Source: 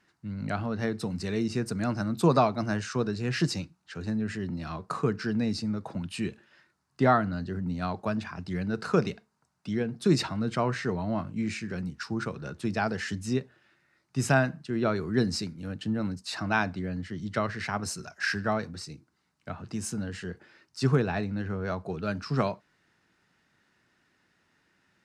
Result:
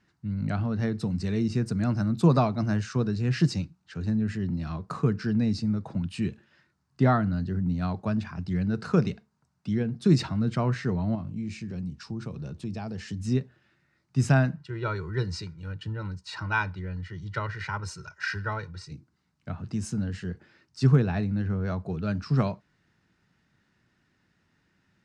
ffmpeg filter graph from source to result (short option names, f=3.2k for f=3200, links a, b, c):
-filter_complex "[0:a]asettb=1/sr,asplit=3[a][b][c];[a]atrim=end=11.154[d];[b]atrim=start=11.15:end=13.2,asetpts=PTS-STARTPTS,afade=t=in:d=0.004:c=qsin,afade=t=out:st=2.046:d=0.004:c=qsin,equalizer=f=1.5k:t=o:w=0.61:g=-8.5,bandreject=f=2k:w=16,acompressor=threshold=-37dB:ratio=2:attack=3.2:release=140:knee=1:detection=peak[e];[c]atrim=start=13.196[f];[d][e]acrossfade=d=0.004:c1=hsin:c2=qsin[g];[g][f]acrossfade=d=0.004:c1=qsin:c2=hsin,asettb=1/sr,asplit=3[h][i][j];[h]atrim=end=14.564[k];[i]atrim=start=14.56:end=18.92,asetpts=PTS-STARTPTS,afade=t=in:d=0.004:c=qsin,afade=t=out:st=4.356:d=0.004:c=qsin,lowpass=f=3.5k:p=1,lowshelf=f=770:t=q:w=1.5:g=-6,aecho=1:1:2.1:0.91,atrim=end_sample=192276[l];[j]atrim=start=18.916[m];[k][l]acrossfade=d=0.004:c1=hsin:c2=qsin[n];[n][m]acrossfade=d=0.004:c1=qsin:c2=hsin,lowpass=8k,bass=f=250:g=10,treble=f=4k:g=1,volume=-3dB"